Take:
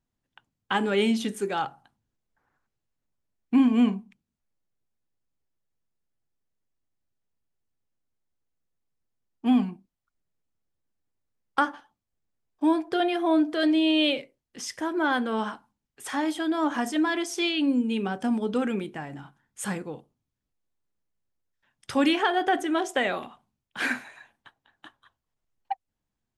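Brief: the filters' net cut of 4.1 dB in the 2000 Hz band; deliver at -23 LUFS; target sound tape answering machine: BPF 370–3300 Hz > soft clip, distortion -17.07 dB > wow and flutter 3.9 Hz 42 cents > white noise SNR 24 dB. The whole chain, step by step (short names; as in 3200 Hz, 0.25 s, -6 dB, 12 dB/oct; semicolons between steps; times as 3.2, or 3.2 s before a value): BPF 370–3300 Hz; bell 2000 Hz -5 dB; soft clip -20 dBFS; wow and flutter 3.9 Hz 42 cents; white noise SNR 24 dB; gain +9 dB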